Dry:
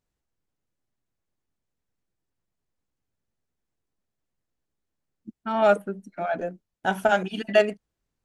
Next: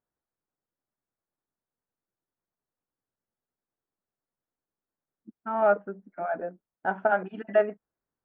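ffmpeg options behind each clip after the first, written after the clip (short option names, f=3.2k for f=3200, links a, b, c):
-af "lowpass=f=1.6k:w=0.5412,lowpass=f=1.6k:w=1.3066,aemphasis=mode=production:type=bsi,volume=-2dB"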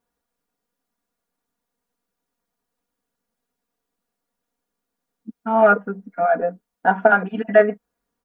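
-af "aecho=1:1:4.2:0.95,volume=8dB"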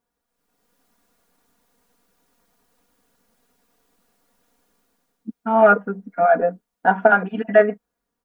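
-af "dynaudnorm=f=120:g=9:m=16dB,volume=-1dB"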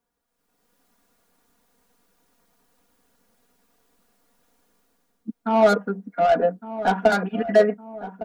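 -filter_complex "[0:a]acrossover=split=190|680[a][b][c];[c]asoftclip=type=tanh:threshold=-22dB[d];[a][b][d]amix=inputs=3:normalize=0,asplit=2[e][f];[f]adelay=1159,lowpass=f=1k:p=1,volume=-13dB,asplit=2[g][h];[h]adelay=1159,lowpass=f=1k:p=1,volume=0.52,asplit=2[i][j];[j]adelay=1159,lowpass=f=1k:p=1,volume=0.52,asplit=2[k][l];[l]adelay=1159,lowpass=f=1k:p=1,volume=0.52,asplit=2[m][n];[n]adelay=1159,lowpass=f=1k:p=1,volume=0.52[o];[e][g][i][k][m][o]amix=inputs=6:normalize=0"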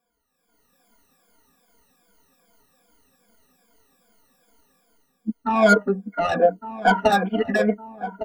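-af "afftfilt=real='re*pow(10,22/40*sin(2*PI*(1.8*log(max(b,1)*sr/1024/100)/log(2)-(-2.5)*(pts-256)/sr)))':imag='im*pow(10,22/40*sin(2*PI*(1.8*log(max(b,1)*sr/1024/100)/log(2)-(-2.5)*(pts-256)/sr)))':win_size=1024:overlap=0.75,volume=-1.5dB"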